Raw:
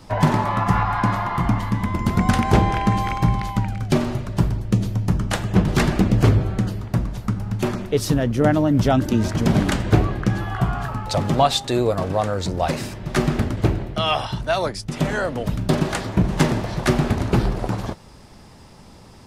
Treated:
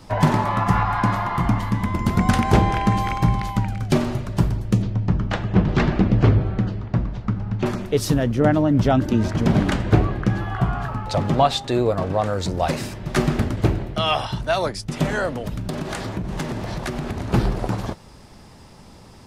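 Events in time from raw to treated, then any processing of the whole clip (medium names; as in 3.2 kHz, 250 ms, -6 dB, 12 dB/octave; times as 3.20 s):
4.82–7.66 s: distance through air 180 m
8.34–12.26 s: treble shelf 5.7 kHz -10 dB
15.30–17.34 s: compression, threshold -23 dBFS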